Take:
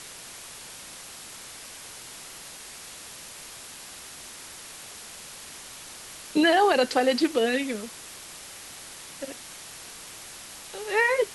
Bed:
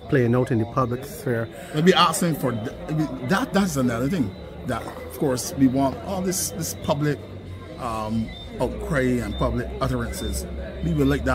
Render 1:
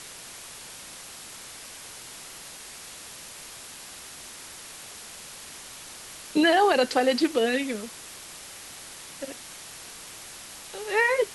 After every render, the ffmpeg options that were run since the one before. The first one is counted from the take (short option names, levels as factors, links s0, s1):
-af anull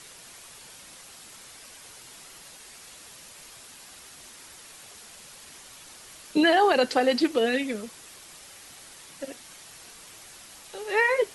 -af "afftdn=nr=6:nf=-43"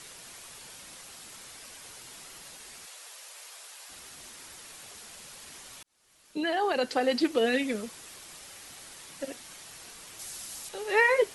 -filter_complex "[0:a]asplit=3[s0][s1][s2];[s0]afade=t=out:st=2.85:d=0.02[s3];[s1]highpass=f=480:w=0.5412,highpass=f=480:w=1.3066,afade=t=in:st=2.85:d=0.02,afade=t=out:st=3.88:d=0.02[s4];[s2]afade=t=in:st=3.88:d=0.02[s5];[s3][s4][s5]amix=inputs=3:normalize=0,asettb=1/sr,asplit=3[s6][s7][s8];[s6]atrim=end=10.194[s9];[s7]atrim=start=10.19:end=10.69,asetpts=PTS-STARTPTS,afade=t=in:d=0.004:c=qsin,afade=t=out:st=0.496:d=0.004:c=qsin,bass=f=250:g=2,treble=f=4000:g=8[s10];[s8]atrim=start=10.686[s11];[s9][s10]acrossfade=d=0.004:c1=hsin:c2=qsin[s12];[s12][s11]acrossfade=d=0.004:c1=qsin:c2=hsin,asplit=2[s13][s14];[s13]atrim=end=5.83,asetpts=PTS-STARTPTS,afade=t=out:st=5.826:d=0.004:c=hsin[s15];[s14]atrim=start=5.83,asetpts=PTS-STARTPTS,afade=t=in:d=1.93[s16];[s15][s16]concat=n=2:v=0:a=1"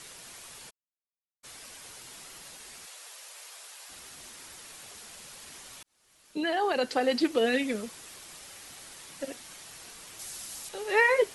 -filter_complex "[0:a]asplit=3[s0][s1][s2];[s0]afade=t=out:st=0.69:d=0.02[s3];[s1]acrusher=bits=2:mix=0:aa=0.5,afade=t=in:st=0.69:d=0.02,afade=t=out:st=1.43:d=0.02[s4];[s2]afade=t=in:st=1.43:d=0.02[s5];[s3][s4][s5]amix=inputs=3:normalize=0"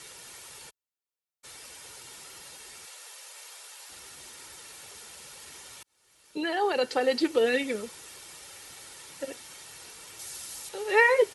-af "highpass=55,aecho=1:1:2.2:0.37"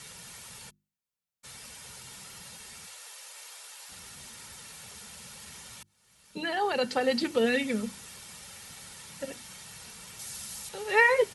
-af "lowshelf=f=260:t=q:w=3:g=6.5,bandreject=f=50:t=h:w=6,bandreject=f=100:t=h:w=6,bandreject=f=150:t=h:w=6,bandreject=f=200:t=h:w=6,bandreject=f=250:t=h:w=6,bandreject=f=300:t=h:w=6,bandreject=f=350:t=h:w=6"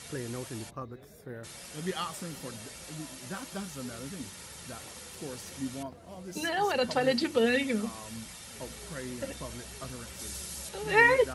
-filter_complex "[1:a]volume=0.119[s0];[0:a][s0]amix=inputs=2:normalize=0"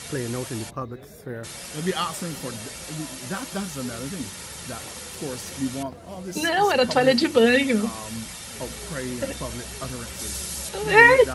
-af "volume=2.66"